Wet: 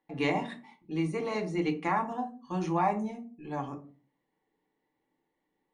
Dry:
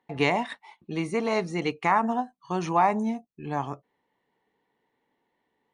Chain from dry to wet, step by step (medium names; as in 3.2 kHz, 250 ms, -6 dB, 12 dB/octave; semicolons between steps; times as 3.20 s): on a send: bass shelf 320 Hz +7.5 dB + reverberation RT60 0.40 s, pre-delay 4 ms, DRR 2 dB; on the sum: trim -8.5 dB